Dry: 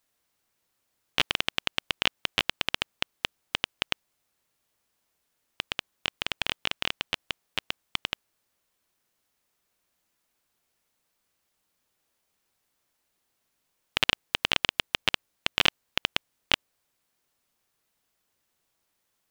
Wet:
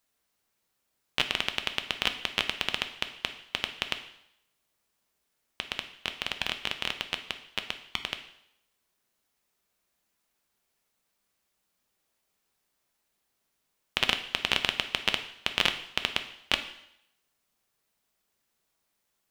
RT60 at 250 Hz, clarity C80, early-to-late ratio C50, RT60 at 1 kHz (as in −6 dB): 0.70 s, 14.0 dB, 11.0 dB, 0.75 s